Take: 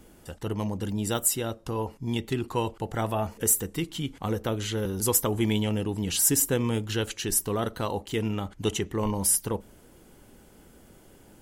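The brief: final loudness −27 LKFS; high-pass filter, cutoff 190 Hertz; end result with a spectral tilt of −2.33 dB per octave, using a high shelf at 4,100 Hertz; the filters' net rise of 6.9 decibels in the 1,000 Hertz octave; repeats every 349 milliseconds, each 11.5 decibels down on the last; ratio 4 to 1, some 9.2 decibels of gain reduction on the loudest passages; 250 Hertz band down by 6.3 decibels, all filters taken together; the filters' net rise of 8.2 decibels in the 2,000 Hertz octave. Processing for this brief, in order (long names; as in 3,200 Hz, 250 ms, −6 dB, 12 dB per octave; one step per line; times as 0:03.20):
high-pass filter 190 Hz
parametric band 250 Hz −7 dB
parametric band 1,000 Hz +6.5 dB
parametric band 2,000 Hz +7.5 dB
high-shelf EQ 4,100 Hz +5.5 dB
downward compressor 4 to 1, threshold −24 dBFS
repeating echo 349 ms, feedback 27%, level −11.5 dB
level +2 dB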